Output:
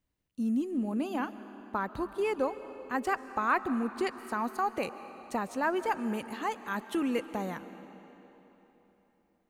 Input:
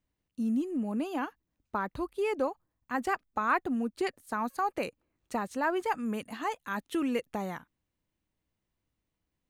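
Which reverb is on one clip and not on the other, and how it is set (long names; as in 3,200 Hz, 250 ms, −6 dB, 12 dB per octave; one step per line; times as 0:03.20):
comb and all-pass reverb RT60 3.7 s, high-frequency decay 0.85×, pre-delay 95 ms, DRR 12.5 dB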